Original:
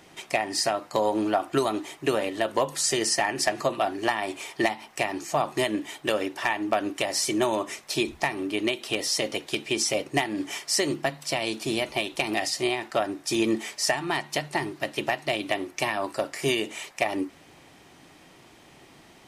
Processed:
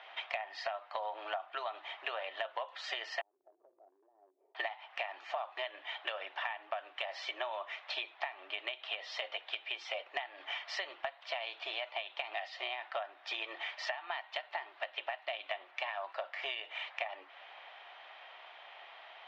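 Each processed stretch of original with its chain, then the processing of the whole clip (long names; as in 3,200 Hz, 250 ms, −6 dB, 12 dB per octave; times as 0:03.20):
0:03.21–0:04.55: Chebyshev band-pass filter 140–400 Hz, order 3 + downward compressor 16 to 1, threshold −47 dBFS
whole clip: elliptic band-pass filter 650–3,400 Hz, stop band 50 dB; downward compressor 6 to 1, threshold −40 dBFS; level +3.5 dB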